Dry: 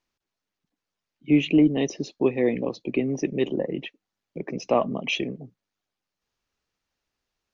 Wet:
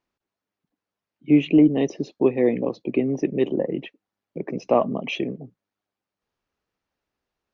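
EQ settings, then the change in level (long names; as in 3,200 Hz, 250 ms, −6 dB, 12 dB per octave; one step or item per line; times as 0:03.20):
high-pass filter 610 Hz 6 dB per octave
spectral tilt −4 dB per octave
+3.0 dB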